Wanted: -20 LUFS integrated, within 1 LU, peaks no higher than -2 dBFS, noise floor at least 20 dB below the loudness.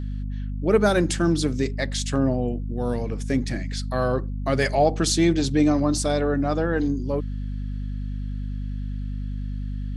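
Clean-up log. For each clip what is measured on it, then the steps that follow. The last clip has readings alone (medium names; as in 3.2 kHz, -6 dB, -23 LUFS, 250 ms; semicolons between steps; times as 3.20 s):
hum 50 Hz; highest harmonic 250 Hz; hum level -26 dBFS; loudness -24.5 LUFS; peak level -6.5 dBFS; loudness target -20.0 LUFS
-> hum notches 50/100/150/200/250 Hz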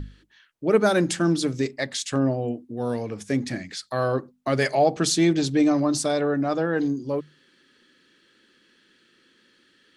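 hum not found; loudness -24.0 LUFS; peak level -8.0 dBFS; loudness target -20.0 LUFS
-> trim +4 dB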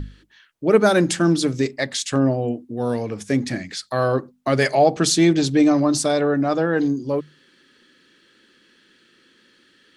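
loudness -20.0 LUFS; peak level -4.0 dBFS; noise floor -58 dBFS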